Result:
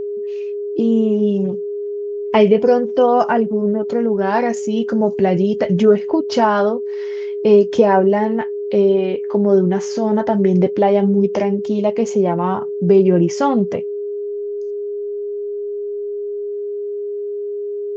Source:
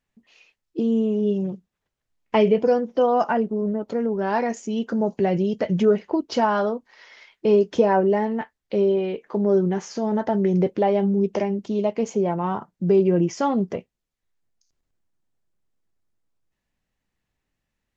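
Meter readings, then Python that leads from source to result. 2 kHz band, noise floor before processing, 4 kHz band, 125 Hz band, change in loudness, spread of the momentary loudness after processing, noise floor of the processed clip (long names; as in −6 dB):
+5.5 dB, −82 dBFS, +5.5 dB, +5.5 dB, +5.0 dB, 12 LU, −25 dBFS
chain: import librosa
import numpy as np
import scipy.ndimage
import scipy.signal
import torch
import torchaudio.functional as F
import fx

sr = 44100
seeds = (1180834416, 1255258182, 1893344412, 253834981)

y = x + 10.0 ** (-27.0 / 20.0) * np.sin(2.0 * np.pi * 410.0 * np.arange(len(x)) / sr)
y = y * librosa.db_to_amplitude(5.5)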